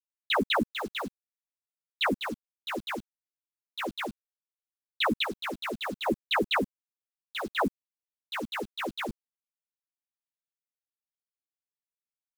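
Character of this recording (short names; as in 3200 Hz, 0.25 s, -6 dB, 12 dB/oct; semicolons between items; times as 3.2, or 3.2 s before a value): chopped level 0.66 Hz, depth 60%, duty 45%; a quantiser's noise floor 8-bit, dither none; a shimmering, thickened sound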